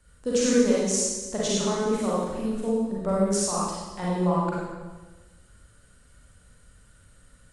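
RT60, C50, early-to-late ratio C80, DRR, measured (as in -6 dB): 1.2 s, -3.5 dB, 0.5 dB, -7.0 dB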